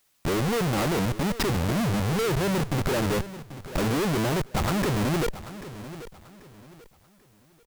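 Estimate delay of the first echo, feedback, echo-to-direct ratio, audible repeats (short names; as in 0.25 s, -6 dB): 0.788 s, 31%, -14.0 dB, 3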